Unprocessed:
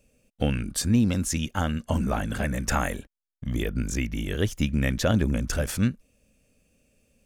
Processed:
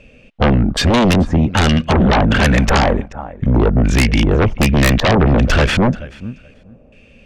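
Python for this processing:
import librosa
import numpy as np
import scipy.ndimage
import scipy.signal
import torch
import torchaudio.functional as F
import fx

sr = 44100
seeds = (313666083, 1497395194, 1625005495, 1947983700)

p1 = fx.filter_lfo_lowpass(x, sr, shape='square', hz=1.3, low_hz=870.0, high_hz=2800.0, q=1.9)
p2 = fx.echo_feedback(p1, sr, ms=432, feedback_pct=16, wet_db=-23.5)
p3 = fx.fold_sine(p2, sr, drive_db=17, ceiling_db=-7.5)
p4 = p2 + (p3 * librosa.db_to_amplitude(-7.5))
y = p4 * librosa.db_to_amplitude(4.0)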